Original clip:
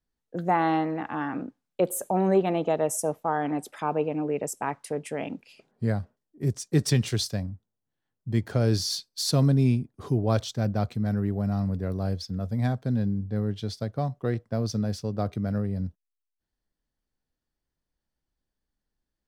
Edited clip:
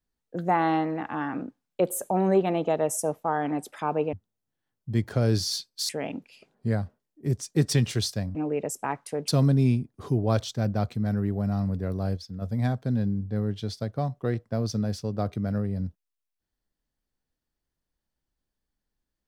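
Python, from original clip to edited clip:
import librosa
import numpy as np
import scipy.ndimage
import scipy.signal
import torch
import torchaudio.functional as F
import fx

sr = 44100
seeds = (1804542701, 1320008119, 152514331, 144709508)

y = fx.edit(x, sr, fx.swap(start_s=4.13, length_s=0.93, other_s=7.52, other_length_s=1.76),
    fx.clip_gain(start_s=12.17, length_s=0.25, db=-5.5), tone=tone)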